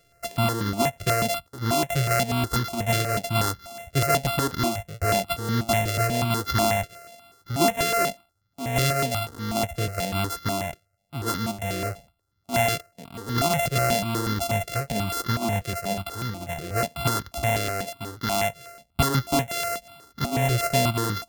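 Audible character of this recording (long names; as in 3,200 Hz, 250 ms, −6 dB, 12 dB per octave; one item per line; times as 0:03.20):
a buzz of ramps at a fixed pitch in blocks of 64 samples
notches that jump at a steady rate 8.2 Hz 240–2,500 Hz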